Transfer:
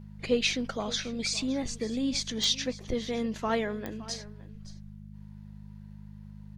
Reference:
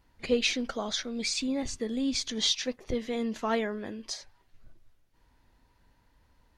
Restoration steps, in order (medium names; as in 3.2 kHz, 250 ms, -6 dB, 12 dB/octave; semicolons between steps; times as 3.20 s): de-click; de-hum 51.2 Hz, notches 4; inverse comb 566 ms -17.5 dB